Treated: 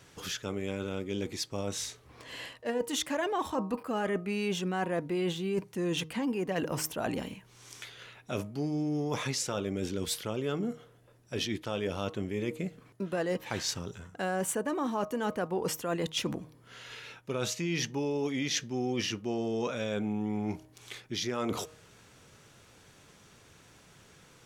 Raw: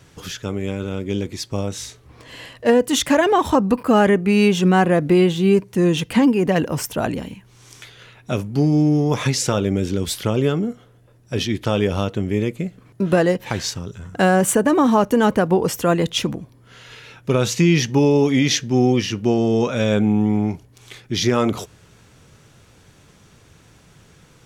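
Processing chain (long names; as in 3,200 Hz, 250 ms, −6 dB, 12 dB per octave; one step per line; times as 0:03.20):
low-shelf EQ 210 Hz −8.5 dB
hum removal 156.3 Hz, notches 8
reversed playback
downward compressor 6 to 1, threshold −25 dBFS, peak gain reduction 12.5 dB
reversed playback
level −4 dB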